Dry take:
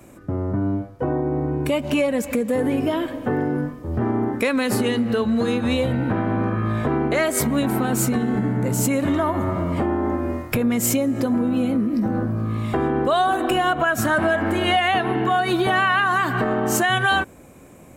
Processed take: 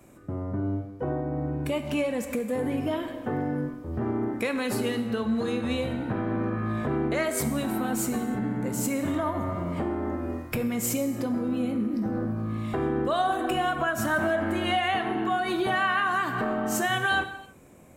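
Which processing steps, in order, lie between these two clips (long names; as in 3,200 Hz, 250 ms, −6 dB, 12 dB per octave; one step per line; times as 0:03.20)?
reverb whose tail is shaped and stops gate 340 ms falling, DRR 7.5 dB
level −7.5 dB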